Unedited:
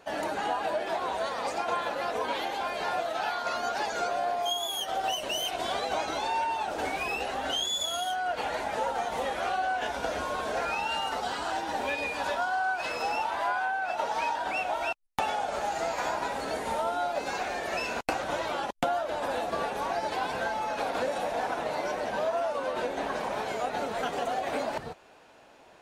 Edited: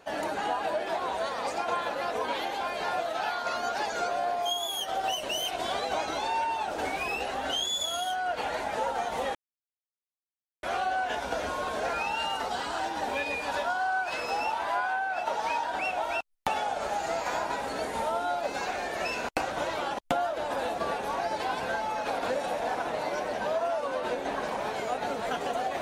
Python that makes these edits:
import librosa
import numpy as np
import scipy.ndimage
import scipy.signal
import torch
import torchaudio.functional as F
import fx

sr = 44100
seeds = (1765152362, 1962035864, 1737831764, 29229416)

y = fx.edit(x, sr, fx.insert_silence(at_s=9.35, length_s=1.28), tone=tone)